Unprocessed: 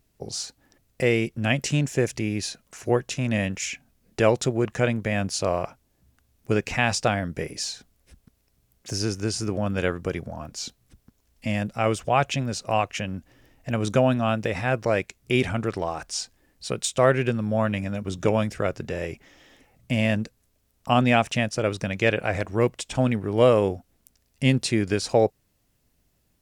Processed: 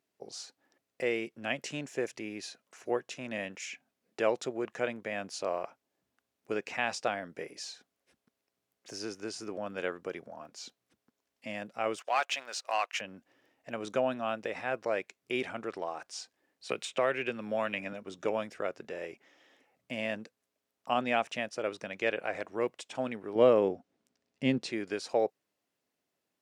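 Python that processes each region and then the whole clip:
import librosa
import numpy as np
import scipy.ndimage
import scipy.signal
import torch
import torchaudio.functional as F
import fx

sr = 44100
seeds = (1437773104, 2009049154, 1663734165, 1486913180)

y = fx.chain(x, sr, fx.highpass(hz=950.0, slope=12),
    fx.leveller(passes=2), at=(11.98, 13.01))
y = fx.chain(y, sr, fx.peak_eq(hz=2500.0, db=7.0, octaves=0.76),
    fx.band_squash(depth_pct=70), at=(16.69, 17.93))
y = fx.chain(y, sr, fx.lowpass(hz=7200.0, slope=12),
    fx.peak_eq(hz=170.0, db=9.0, octaves=2.8), at=(23.35, 24.72))
y = scipy.signal.sosfilt(scipy.signal.butter(2, 340.0, 'highpass', fs=sr, output='sos'), y)
y = fx.high_shelf(y, sr, hz=5900.0, db=-10.0)
y = y * 10.0 ** (-7.5 / 20.0)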